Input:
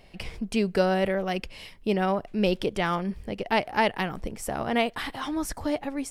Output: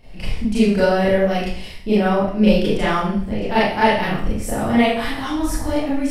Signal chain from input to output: bass shelf 200 Hz +10.5 dB; Schroeder reverb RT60 0.57 s, combs from 26 ms, DRR -9.5 dB; trim -3.5 dB

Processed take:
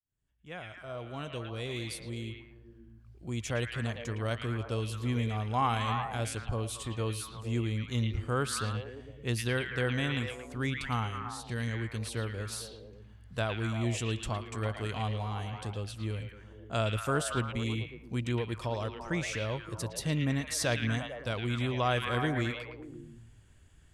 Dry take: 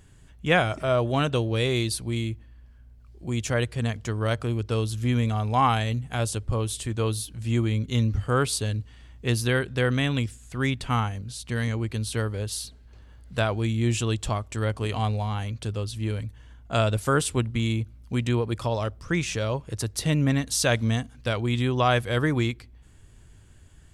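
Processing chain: fade-in on the opening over 3.18 s; repeats whose band climbs or falls 112 ms, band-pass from 2.5 kHz, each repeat -0.7 oct, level -0.5 dB; trim -7.5 dB

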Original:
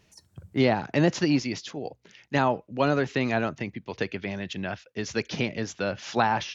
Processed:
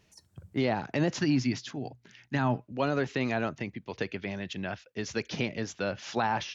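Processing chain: 1.18–2.72 s: graphic EQ with 31 bands 125 Hz +11 dB, 250 Hz +7 dB, 500 Hz -9 dB, 1.6 kHz +5 dB; peak limiter -14.5 dBFS, peak gain reduction 6.5 dB; trim -3 dB

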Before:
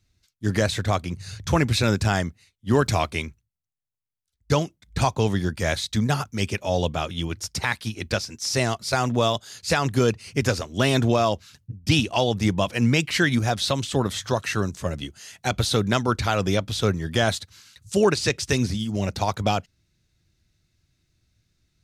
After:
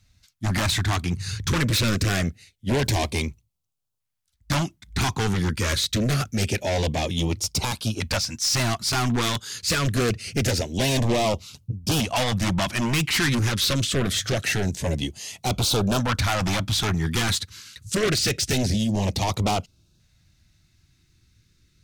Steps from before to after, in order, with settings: in parallel at -9 dB: sine folder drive 15 dB, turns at -8 dBFS; on the sum: LFO notch saw up 0.25 Hz 350–2100 Hz; trim -5 dB

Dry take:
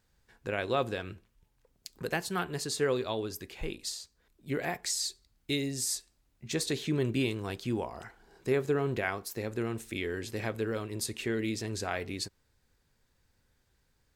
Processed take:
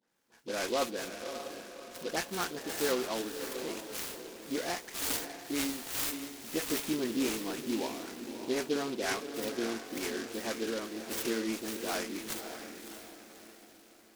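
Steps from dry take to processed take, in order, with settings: delay that grows with frequency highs late, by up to 164 ms; Chebyshev high-pass 230 Hz, order 3; on a send: echo that smears into a reverb 596 ms, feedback 44%, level -8 dB; on the sum: delay time shaken by noise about 3.5 kHz, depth 0.078 ms

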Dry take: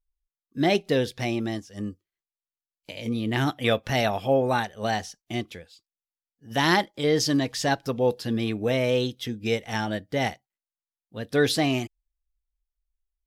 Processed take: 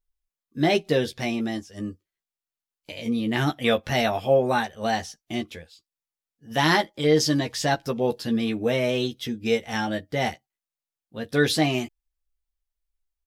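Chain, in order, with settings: doubling 13 ms -5 dB

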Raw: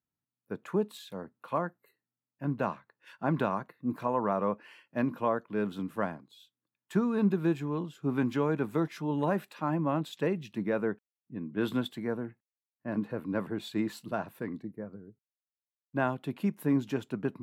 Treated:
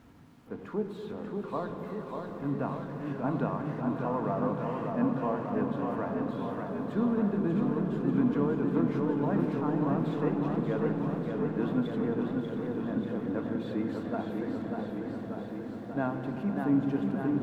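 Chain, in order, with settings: jump at every zero crossing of -41.5 dBFS; low-pass 3.3 kHz 6 dB/octave; treble shelf 2.4 kHz -11.5 dB; echo with a slow build-up 89 ms, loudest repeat 5, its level -17 dB; on a send at -7 dB: reverberation RT60 3.3 s, pre-delay 3 ms; on the sum: modulated delay 590 ms, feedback 73%, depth 88 cents, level -5 dB; trim -3.5 dB

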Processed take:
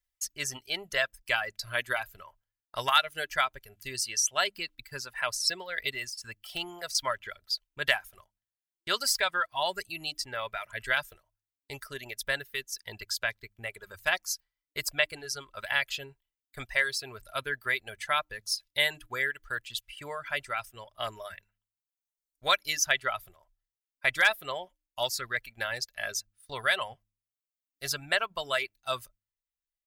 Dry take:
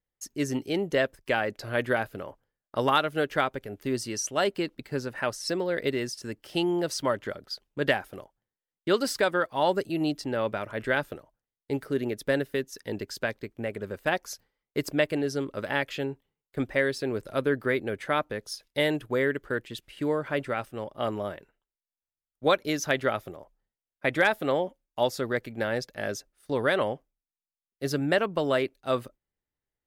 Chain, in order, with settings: de-hum 101.7 Hz, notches 3; reverb removal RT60 1.5 s; 6.01–6.95 s: de-esser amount 100%; amplifier tone stack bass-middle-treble 10-0-10; comb 3 ms, depth 35%; trim +7 dB

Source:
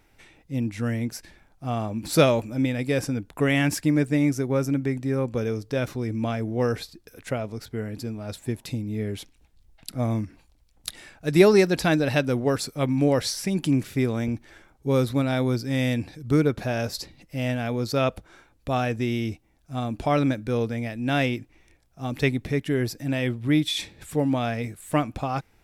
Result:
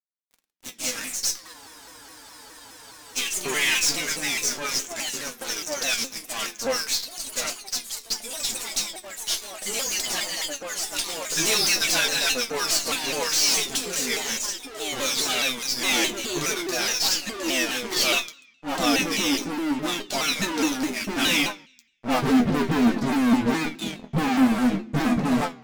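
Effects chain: band-pass sweep 6 kHz -> 240 Hz, 21.79–22.29 s; phase dispersion highs, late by 111 ms, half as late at 580 Hz; fuzz box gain 51 dB, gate -54 dBFS; chord resonator E3 major, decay 0.22 s; crossover distortion -54.5 dBFS; on a send at -11 dB: reverberation RT60 0.70 s, pre-delay 3 ms; on the sum: ever faster or slower copies 99 ms, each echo +3 st, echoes 3, each echo -6 dB; spectral freeze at 1.56 s, 1.62 s; vibrato with a chosen wave saw down 4.8 Hz, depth 160 cents; trim +7.5 dB

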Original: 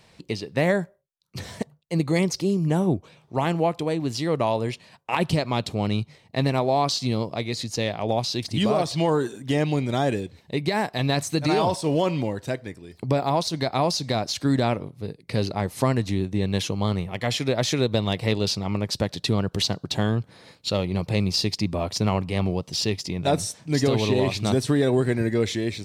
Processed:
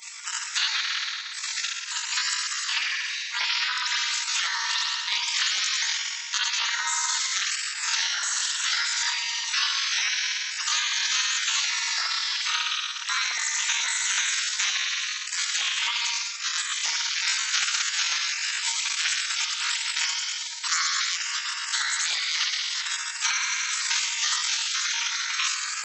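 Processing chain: spring tank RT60 1.3 s, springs 57 ms, chirp 45 ms, DRR -10 dB; FFT band-pass 570–4900 Hz; compression 6:1, threshold -20 dBFS, peak gain reduction 12 dB; spectral gate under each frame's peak -15 dB weak; pitch shift +8.5 st; three bands compressed up and down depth 70%; trim +8 dB

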